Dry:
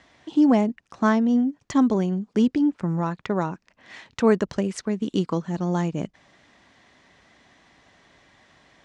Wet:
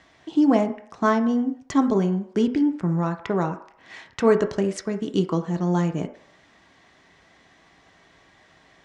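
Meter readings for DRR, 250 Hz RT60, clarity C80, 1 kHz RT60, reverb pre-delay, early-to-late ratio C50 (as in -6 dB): 6.0 dB, 0.45 s, 15.5 dB, 0.65 s, 3 ms, 11.5 dB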